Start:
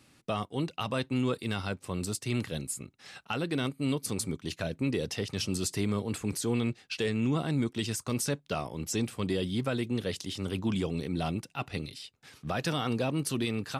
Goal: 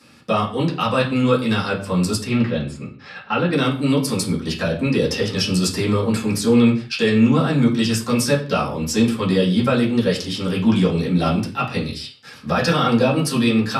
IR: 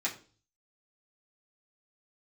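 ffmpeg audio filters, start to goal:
-filter_complex "[0:a]asettb=1/sr,asplit=3[a][b][c];[a]atrim=end=2.244[d];[b]atrim=start=2.24:end=3.53,asetpts=PTS-STARTPTS,afade=t=in:d=0.004:c=qsin,afade=t=out:st=1.286:d=0.004:c=qsin,lowpass=3.1k[e];[c]atrim=start=3.526[f];[d][e]acrossfade=d=0.004:c1=hsin:c2=qsin[g];[g][f]acrossfade=d=0.004:c1=qsin:c2=hsin[h];[1:a]atrim=start_sample=2205,afade=t=out:st=0.19:d=0.01,atrim=end_sample=8820,asetrate=30429,aresample=44100[i];[h][i]afir=irnorm=-1:irlink=0,volume=5.5dB"

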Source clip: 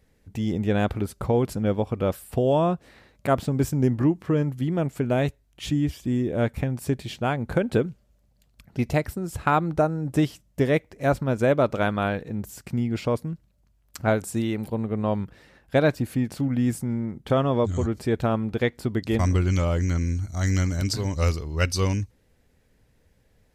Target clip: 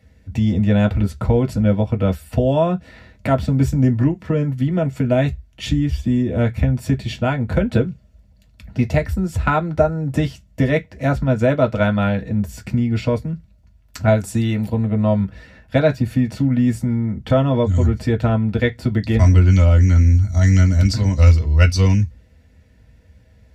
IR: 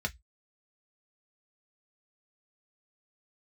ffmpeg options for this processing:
-filter_complex "[0:a]asettb=1/sr,asplit=3[a][b][c];[a]atrim=end=14.024[d];[b]atrim=start=14.02:end=15.21,asetpts=PTS-STARTPTS,afade=t=in:d=0.004:c=qsin,afade=t=out:st=1.186:d=0.004:c=qsin,highshelf=f=5.9k:g=5[e];[c]atrim=start=15.206[f];[d][e]acrossfade=d=0.004:c1=hsin:c2=qsin[g];[g][f]acrossfade=d=0.004:c1=qsin:c2=hsin,asplit=2[h][i];[i]acompressor=threshold=-30dB:ratio=6,volume=-0.5dB[j];[h][j]amix=inputs=2:normalize=0[k];[1:a]atrim=start_sample=2205[l];[k][l]afir=irnorm=-1:irlink=0,volume=-2.5dB"

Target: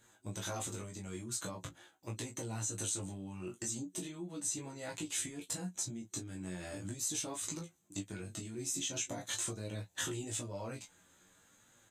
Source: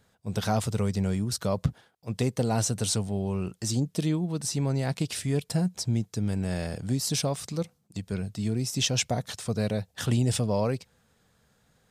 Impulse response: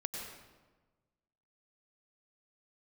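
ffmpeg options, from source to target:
-af "bandreject=f=730:w=12,flanger=delay=8.5:depth=3.2:regen=19:speed=0.85:shape=triangular,superequalizer=6b=2.82:7b=0.708:14b=0.501:15b=2.24,alimiter=limit=-22dB:level=0:latency=1:release=120,acompressor=threshold=-37dB:ratio=20,flanger=delay=19:depth=3.1:speed=0.4,lowshelf=f=460:g=-9.5,aecho=1:1:17|35:0.501|0.141,volume=8dB"

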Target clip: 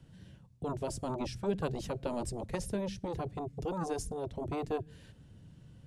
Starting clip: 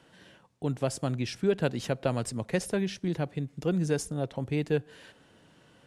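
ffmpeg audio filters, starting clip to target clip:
-filter_complex "[0:a]equalizer=f=1.3k:t=o:w=2.8:g=-7,acrossover=split=150[a][b];[a]aeval=exprs='0.0316*sin(PI/2*6.31*val(0)/0.0316)':c=same[c];[c][b]amix=inputs=2:normalize=0,volume=-5dB"

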